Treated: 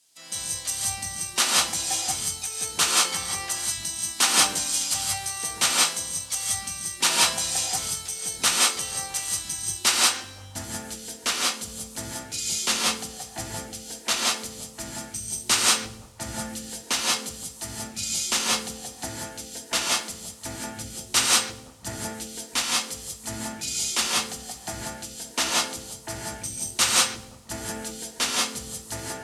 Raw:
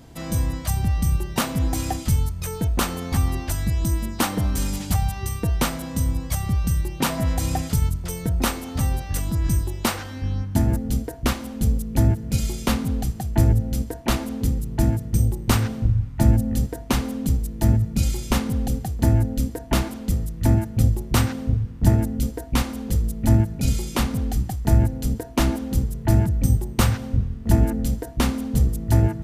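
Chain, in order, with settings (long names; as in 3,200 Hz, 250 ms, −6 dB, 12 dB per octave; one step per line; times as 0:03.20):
reverb whose tail is shaped and stops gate 210 ms rising, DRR −2.5 dB
background noise blue −48 dBFS
meter weighting curve ITU-R 468
echo through a band-pass that steps 174 ms, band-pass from 290 Hz, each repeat 0.7 octaves, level −9 dB
multiband upward and downward expander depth 70%
level −5.5 dB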